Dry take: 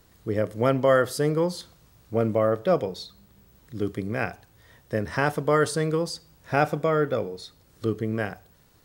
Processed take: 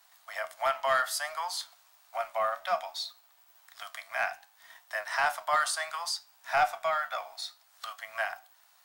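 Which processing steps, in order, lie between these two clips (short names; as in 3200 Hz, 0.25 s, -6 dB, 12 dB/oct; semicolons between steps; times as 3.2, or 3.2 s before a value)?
steep high-pass 650 Hz 96 dB/oct; in parallel at 0 dB: compressor, threshold -41 dBFS, peak gain reduction 19.5 dB; on the sum: sample leveller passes 1; flange 0.61 Hz, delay 8.8 ms, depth 6.1 ms, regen +69%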